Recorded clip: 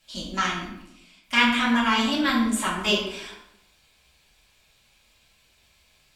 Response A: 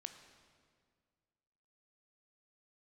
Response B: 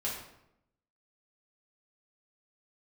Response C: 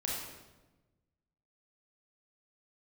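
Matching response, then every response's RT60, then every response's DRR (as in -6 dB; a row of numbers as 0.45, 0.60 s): B; 1.9, 0.80, 1.1 s; 7.0, -6.5, -4.0 dB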